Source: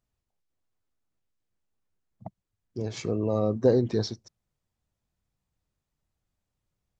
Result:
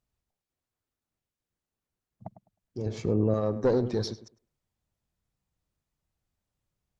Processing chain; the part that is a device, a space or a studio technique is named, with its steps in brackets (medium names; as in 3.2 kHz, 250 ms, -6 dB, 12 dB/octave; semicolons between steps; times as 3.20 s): rockabilly slapback (valve stage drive 16 dB, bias 0.4; tape echo 104 ms, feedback 21%, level -11.5 dB, low-pass 1.6 kHz); 2.86–3.34 s: tilt shelf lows +6 dB, about 820 Hz